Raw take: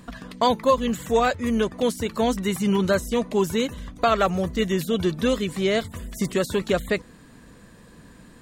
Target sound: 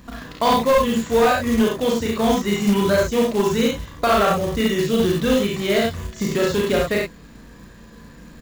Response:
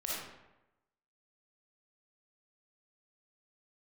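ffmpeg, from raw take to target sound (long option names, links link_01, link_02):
-filter_complex "[0:a]aecho=1:1:54|67:0.631|0.596,aeval=exprs='val(0)+0.00355*(sin(2*PI*50*n/s)+sin(2*PI*2*50*n/s)/2+sin(2*PI*3*50*n/s)/3+sin(2*PI*4*50*n/s)/4+sin(2*PI*5*50*n/s)/5)':channel_layout=same,asplit=2[link_01][link_02];[link_02]adelay=35,volume=-2.5dB[link_03];[link_01][link_03]amix=inputs=2:normalize=0,aresample=16000,asoftclip=type=hard:threshold=-11dB,aresample=44100,acrusher=bits=4:mode=log:mix=0:aa=0.000001"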